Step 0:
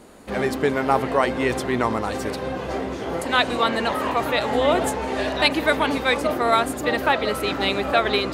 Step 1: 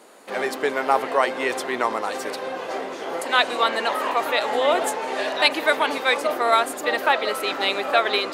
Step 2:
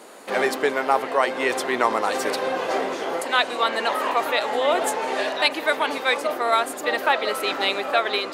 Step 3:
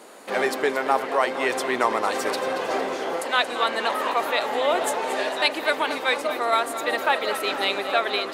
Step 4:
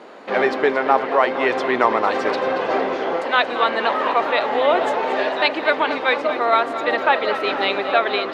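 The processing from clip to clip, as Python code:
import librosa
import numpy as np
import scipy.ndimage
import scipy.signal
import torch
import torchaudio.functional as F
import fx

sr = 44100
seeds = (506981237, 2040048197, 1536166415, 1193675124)

y1 = scipy.signal.sosfilt(scipy.signal.butter(2, 450.0, 'highpass', fs=sr, output='sos'), x)
y1 = F.gain(torch.from_numpy(y1), 1.0).numpy()
y2 = fx.rider(y1, sr, range_db=5, speed_s=0.5)
y3 = fx.echo_feedback(y2, sr, ms=228, feedback_pct=57, wet_db=-12.0)
y3 = F.gain(torch.from_numpy(y3), -1.5).numpy()
y4 = fx.air_absorb(y3, sr, metres=220.0)
y4 = F.gain(torch.from_numpy(y4), 6.0).numpy()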